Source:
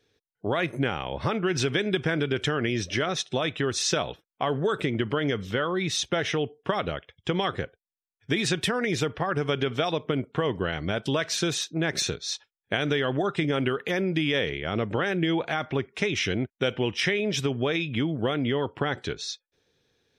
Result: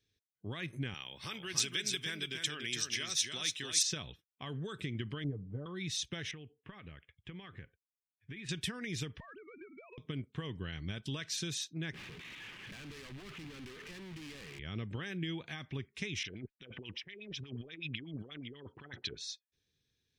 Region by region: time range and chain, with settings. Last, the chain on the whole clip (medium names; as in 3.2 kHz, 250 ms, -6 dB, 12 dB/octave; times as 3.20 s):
0.94–3.83 s: high-pass 80 Hz + RIAA curve recording + delay 289 ms -5 dB
5.24–5.66 s: Chebyshev low-pass 740 Hz, order 3 + comb 6.7 ms, depth 66%
6.31–8.49 s: resonant high shelf 3.4 kHz -13 dB, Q 1.5 + compression 2:1, threshold -37 dBFS
9.20–9.98 s: formants replaced by sine waves + compression 12:1, threshold -30 dBFS
11.94–14.59 s: one-bit delta coder 16 kbps, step -26.5 dBFS + high-pass 140 Hz + overload inside the chain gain 32 dB
16.23–19.19 s: bass shelf 200 Hz -10 dB + compressor with a negative ratio -35 dBFS + LFO low-pass sine 8.2 Hz 370–4800 Hz
whole clip: amplifier tone stack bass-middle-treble 6-0-2; band-stop 1.4 kHz, Q 12; trim +6.5 dB